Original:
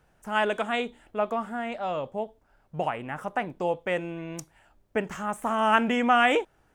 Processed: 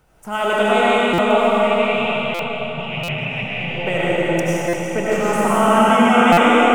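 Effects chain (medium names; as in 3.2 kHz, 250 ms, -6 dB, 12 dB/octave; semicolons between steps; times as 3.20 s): treble shelf 8.2 kHz +5.5 dB; band-stop 1.7 kHz, Q 8.2; echo whose repeats swap between lows and highs 169 ms, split 1 kHz, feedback 66%, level -9.5 dB; peak limiter -18.5 dBFS, peak gain reduction 10 dB; 1.48–3.76 s: FFT filter 150 Hz 0 dB, 300 Hz -15 dB, 1.4 kHz -20 dB, 2.5 kHz +10 dB, 11 kHz -25 dB; reverberation RT60 5.1 s, pre-delay 55 ms, DRR -9 dB; buffer glitch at 1.13/2.34/3.03/4.68/6.32 s, samples 256, times 8; trim +5.5 dB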